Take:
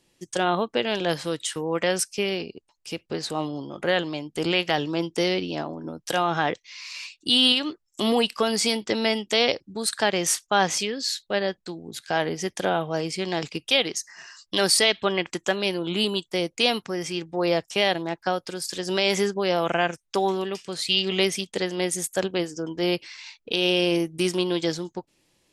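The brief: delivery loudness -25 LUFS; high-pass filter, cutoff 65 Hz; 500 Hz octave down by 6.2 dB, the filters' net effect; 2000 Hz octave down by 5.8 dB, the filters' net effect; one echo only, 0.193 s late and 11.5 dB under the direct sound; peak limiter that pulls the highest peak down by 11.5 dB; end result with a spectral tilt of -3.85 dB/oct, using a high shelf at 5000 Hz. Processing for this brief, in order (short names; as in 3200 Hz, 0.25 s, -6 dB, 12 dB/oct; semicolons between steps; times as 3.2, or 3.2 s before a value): HPF 65 Hz; bell 500 Hz -8 dB; bell 2000 Hz -6 dB; high shelf 5000 Hz -6.5 dB; limiter -21.5 dBFS; echo 0.193 s -11.5 dB; gain +8 dB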